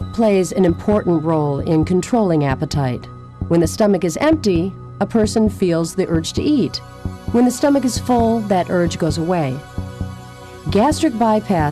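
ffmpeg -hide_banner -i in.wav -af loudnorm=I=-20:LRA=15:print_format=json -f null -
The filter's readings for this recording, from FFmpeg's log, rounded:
"input_i" : "-17.4",
"input_tp" : "-7.0",
"input_lra" : "1.4",
"input_thresh" : "-28.0",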